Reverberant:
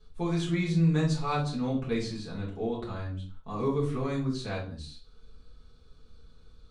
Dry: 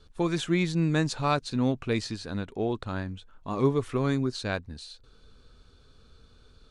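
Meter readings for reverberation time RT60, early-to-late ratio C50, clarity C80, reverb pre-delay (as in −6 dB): non-exponential decay, 7.0 dB, 13.0 dB, 5 ms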